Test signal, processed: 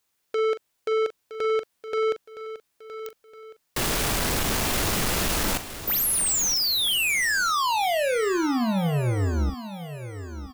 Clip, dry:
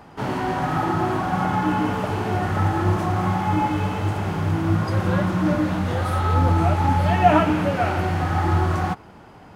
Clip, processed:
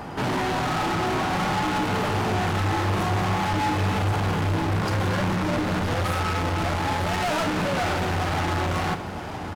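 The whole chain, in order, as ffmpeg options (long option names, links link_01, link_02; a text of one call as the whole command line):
ffmpeg -i in.wav -filter_complex "[0:a]apsyclip=19dB,asoftclip=type=tanh:threshold=-15dB,asplit=2[link_01][link_02];[link_02]adelay=41,volume=-11.5dB[link_03];[link_01][link_03]amix=inputs=2:normalize=0,aecho=1:1:966|1932|2898|3864:0.237|0.0949|0.0379|0.0152,volume=-8.5dB" out.wav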